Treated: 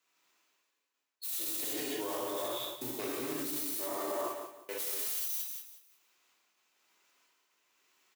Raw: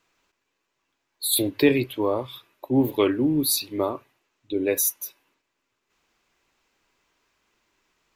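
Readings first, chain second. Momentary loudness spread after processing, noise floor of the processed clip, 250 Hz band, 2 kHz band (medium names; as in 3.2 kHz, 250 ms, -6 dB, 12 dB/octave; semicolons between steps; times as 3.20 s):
8 LU, -83 dBFS, -18.5 dB, -11.5 dB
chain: self-modulated delay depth 0.22 ms; modulation noise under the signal 15 dB; trance gate "xxxxxx.." 128 bpm -60 dB; treble shelf 8.2 kHz +6.5 dB; band-stop 1.6 kHz, Q 27; gated-style reverb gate 380 ms flat, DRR -4.5 dB; reverse; compression 16:1, threshold -29 dBFS, peak gain reduction 18.5 dB; reverse; bass shelf 490 Hz -9.5 dB; feedback delay 179 ms, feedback 36%, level -11 dB; peak limiter -31 dBFS, peak gain reduction 10.5 dB; high-pass 160 Hz 12 dB/octave; three bands expanded up and down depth 40%; trim +4 dB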